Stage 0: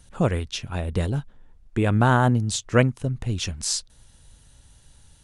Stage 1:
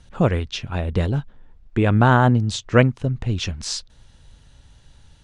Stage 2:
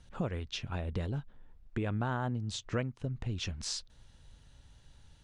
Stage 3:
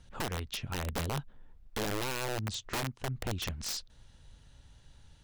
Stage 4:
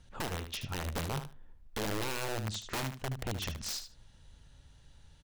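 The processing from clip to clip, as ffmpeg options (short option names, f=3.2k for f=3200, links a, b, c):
-af "lowpass=4.8k,volume=3.5dB"
-af "acompressor=threshold=-25dB:ratio=3,volume=-8dB"
-af "aeval=exprs='(mod(26.6*val(0)+1,2)-1)/26.6':c=same,volume=1dB"
-af "aecho=1:1:75|150:0.335|0.0569,volume=-1.5dB"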